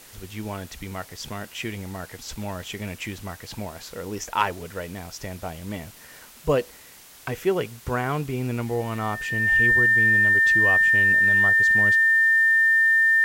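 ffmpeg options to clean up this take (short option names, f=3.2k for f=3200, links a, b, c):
-af "adeclick=t=4,bandreject=f=1.8k:w=30,afftdn=nr=21:nf=-46"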